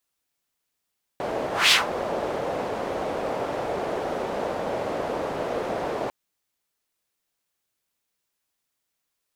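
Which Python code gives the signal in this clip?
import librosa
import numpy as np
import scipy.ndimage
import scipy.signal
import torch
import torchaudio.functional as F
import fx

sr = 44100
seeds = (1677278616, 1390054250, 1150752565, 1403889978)

y = fx.whoosh(sr, seeds[0], length_s=4.9, peak_s=0.51, rise_s=0.2, fall_s=0.17, ends_hz=570.0, peak_hz=3500.0, q=1.8, swell_db=12)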